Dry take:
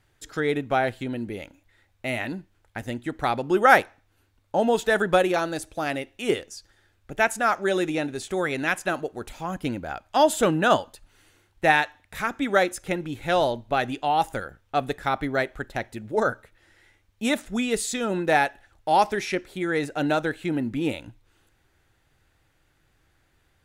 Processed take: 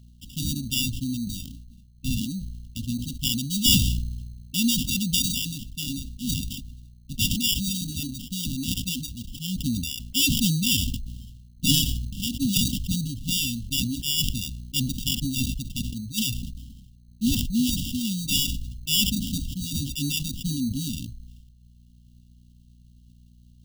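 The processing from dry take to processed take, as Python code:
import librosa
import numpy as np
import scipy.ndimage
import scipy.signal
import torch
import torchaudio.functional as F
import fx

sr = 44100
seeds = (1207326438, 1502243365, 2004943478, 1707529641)

y = fx.add_hum(x, sr, base_hz=60, snr_db=28)
y = fx.dereverb_blind(y, sr, rt60_s=1.2)
y = fx.sample_hold(y, sr, seeds[0], rate_hz=2100.0, jitter_pct=0)
y = fx.brickwall_bandstop(y, sr, low_hz=280.0, high_hz=2700.0)
y = fx.sustainer(y, sr, db_per_s=39.0)
y = y * librosa.db_to_amplitude(4.5)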